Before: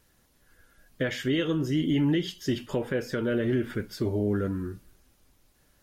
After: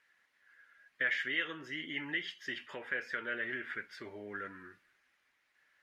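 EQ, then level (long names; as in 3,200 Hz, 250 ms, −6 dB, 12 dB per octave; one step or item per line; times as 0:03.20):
resonant band-pass 1,900 Hz, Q 3.2
+5.5 dB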